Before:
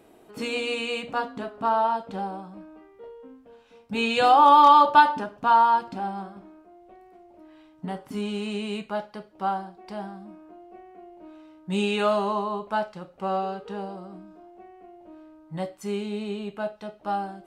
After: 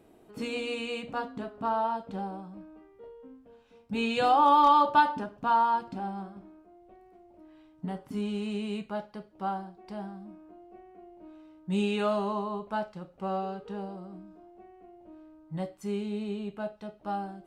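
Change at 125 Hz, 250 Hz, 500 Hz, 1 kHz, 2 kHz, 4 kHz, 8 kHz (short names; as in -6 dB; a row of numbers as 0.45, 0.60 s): -1.5 dB, -2.0 dB, -5.0 dB, -6.0 dB, -6.5 dB, -7.0 dB, n/a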